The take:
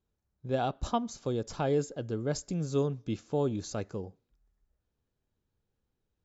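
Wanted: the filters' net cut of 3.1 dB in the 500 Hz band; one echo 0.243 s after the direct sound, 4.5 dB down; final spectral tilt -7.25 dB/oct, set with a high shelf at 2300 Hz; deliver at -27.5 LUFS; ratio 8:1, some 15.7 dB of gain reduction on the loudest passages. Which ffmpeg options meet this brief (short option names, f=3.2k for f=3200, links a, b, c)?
-af "equalizer=f=500:t=o:g=-3.5,highshelf=f=2.3k:g=-5.5,acompressor=threshold=-42dB:ratio=8,aecho=1:1:243:0.596,volume=18.5dB"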